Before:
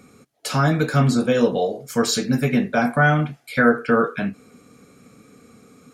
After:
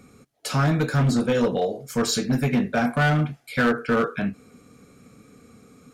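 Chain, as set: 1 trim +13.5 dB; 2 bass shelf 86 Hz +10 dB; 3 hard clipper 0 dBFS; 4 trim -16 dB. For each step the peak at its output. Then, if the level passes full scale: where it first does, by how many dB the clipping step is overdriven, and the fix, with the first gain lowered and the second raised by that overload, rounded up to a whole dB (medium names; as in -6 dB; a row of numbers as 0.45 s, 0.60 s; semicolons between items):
+9.5 dBFS, +10.0 dBFS, 0.0 dBFS, -16.0 dBFS; step 1, 10.0 dB; step 1 +3.5 dB, step 4 -6 dB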